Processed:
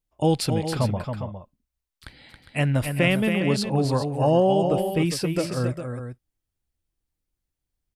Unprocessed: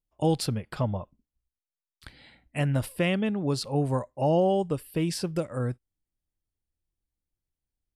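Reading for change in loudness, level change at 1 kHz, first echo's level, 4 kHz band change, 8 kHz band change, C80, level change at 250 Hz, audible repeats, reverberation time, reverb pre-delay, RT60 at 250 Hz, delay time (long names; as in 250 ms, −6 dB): +4.5 dB, +5.0 dB, −7.0 dB, +5.5 dB, +4.5 dB, no reverb audible, +4.5 dB, 2, no reverb audible, no reverb audible, no reverb audible, 275 ms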